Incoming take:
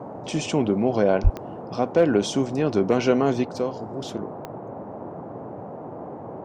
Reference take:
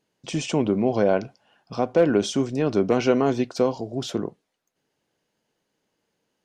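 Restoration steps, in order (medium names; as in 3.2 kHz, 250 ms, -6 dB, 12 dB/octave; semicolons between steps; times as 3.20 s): de-click; 1.23–1.35 s: high-pass 140 Hz 24 dB/octave; noise print and reduce 30 dB; trim 0 dB, from 3.45 s +5 dB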